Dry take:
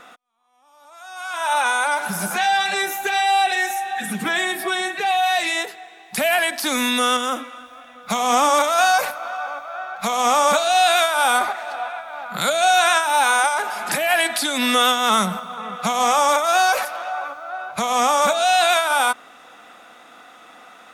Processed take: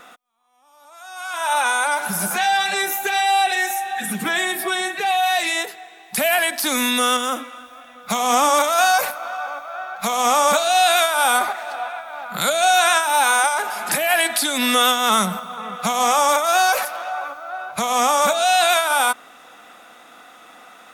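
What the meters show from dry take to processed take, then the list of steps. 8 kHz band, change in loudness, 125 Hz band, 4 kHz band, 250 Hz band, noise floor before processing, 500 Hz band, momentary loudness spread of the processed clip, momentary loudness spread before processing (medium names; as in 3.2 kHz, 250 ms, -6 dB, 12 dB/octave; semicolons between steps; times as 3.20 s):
+3.0 dB, +0.5 dB, no reading, +0.5 dB, 0.0 dB, -46 dBFS, 0.0 dB, 13 LU, 13 LU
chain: treble shelf 11 kHz +10 dB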